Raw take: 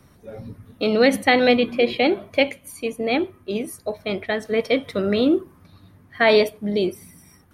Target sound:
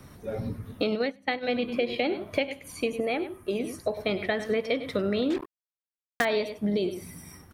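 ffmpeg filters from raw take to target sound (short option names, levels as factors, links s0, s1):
-filter_complex "[0:a]acrossover=split=6500[s0][s1];[s1]acompressor=threshold=0.00316:ratio=4:attack=1:release=60[s2];[s0][s2]amix=inputs=2:normalize=0,aecho=1:1:98:0.211,asettb=1/sr,asplit=3[s3][s4][s5];[s3]atrim=end=5.304[s6];[s4]atrim=start=5.3:end=6.25,asetpts=PTS-STARTPTS,afade=t=in:d=0.004:c=qsin,afade=t=out:st=0.946:d=0.004:c=qsin,acrusher=bits=3:mix=0:aa=0.5[s7];[s5]atrim=start=6.246[s8];[s6][s7]acrossfade=d=0.004:c1=hsin:c2=qsin[s9];[s9][s8]acrossfade=d=0.004:c1=qsin:c2=hsin,acompressor=threshold=0.0398:ratio=8,asplit=3[s10][s11][s12];[s10]afade=t=out:st=0.94:d=0.02[s13];[s11]agate=range=0.0891:threshold=0.0355:ratio=16:detection=peak,afade=t=in:st=0.94:d=0.02,afade=t=out:st=1.47:d=0.02[s14];[s12]afade=t=in:st=1.47:d=0.02[s15];[s13][s14][s15]amix=inputs=3:normalize=0,asettb=1/sr,asplit=3[s16][s17][s18];[s16]atrim=end=3.004[s19];[s17]atrim=start=3:end=3.59,asetpts=PTS-STARTPTS,afade=t=in:d=0.004:c=qsin,afade=t=out:st=0.586:d=0.004:c=qsin,equalizer=f=100:t=o:w=0.67:g=-6,equalizer=f=250:t=o:w=0.67:g=-5,equalizer=f=4000:t=o:w=0.67:g=-7,equalizer=f=10000:t=o:w=0.67:g=11[s20];[s18]atrim=start=3.586[s21];[s19][s20]acrossfade=d=0.004:c1=hsin:c2=qsin[s22];[s22][s21]acrossfade=d=0.004:c1=qsin:c2=hsin,volume=1.58"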